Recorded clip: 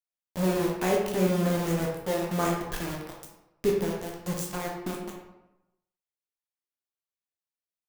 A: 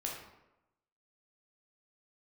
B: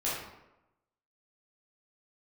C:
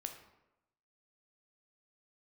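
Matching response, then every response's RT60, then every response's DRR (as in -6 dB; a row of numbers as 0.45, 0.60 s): A; 0.95, 0.95, 0.95 s; -2.0, -8.5, 5.0 dB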